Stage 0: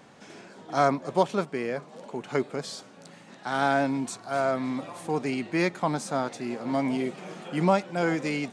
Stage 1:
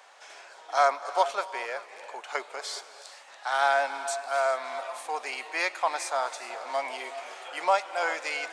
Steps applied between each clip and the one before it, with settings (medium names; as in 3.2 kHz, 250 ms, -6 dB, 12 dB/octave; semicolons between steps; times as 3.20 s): high-pass 640 Hz 24 dB/octave; gated-style reverb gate 440 ms rising, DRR 12 dB; trim +2.5 dB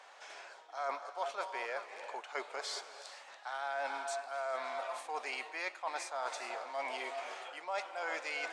treble shelf 9.9 kHz -11.5 dB; reverse; compression 8:1, threshold -33 dBFS, peak gain reduction 16 dB; reverse; trim -2 dB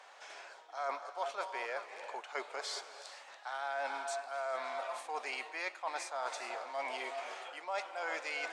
high-pass 150 Hz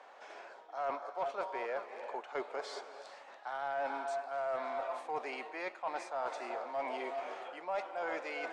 tilt EQ -4 dB/octave; saturation -27 dBFS, distortion -23 dB; trim +1 dB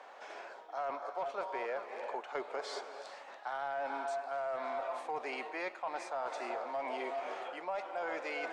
hum notches 50/100 Hz; compression, threshold -37 dBFS, peak gain reduction 6 dB; trim +3 dB